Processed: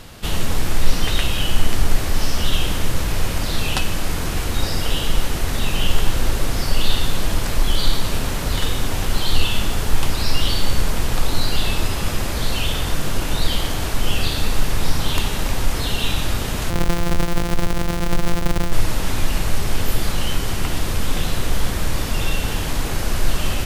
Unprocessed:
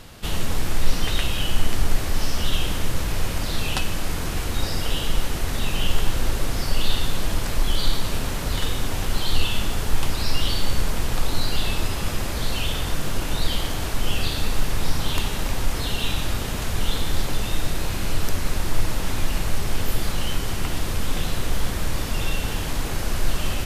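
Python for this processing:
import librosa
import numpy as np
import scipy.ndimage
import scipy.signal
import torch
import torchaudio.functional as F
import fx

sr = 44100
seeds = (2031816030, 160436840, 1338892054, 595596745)

y = fx.sample_sort(x, sr, block=256, at=(16.7, 18.73))
y = y * librosa.db_to_amplitude(3.5)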